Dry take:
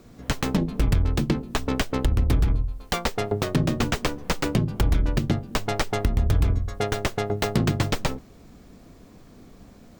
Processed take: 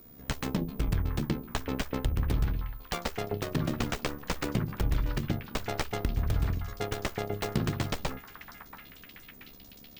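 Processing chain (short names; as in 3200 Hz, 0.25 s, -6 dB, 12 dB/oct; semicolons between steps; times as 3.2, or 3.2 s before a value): whine 15000 Hz -44 dBFS; AM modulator 71 Hz, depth 40%; delay with a stepping band-pass 0.681 s, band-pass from 1300 Hz, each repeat 0.7 oct, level -7 dB; gain -5 dB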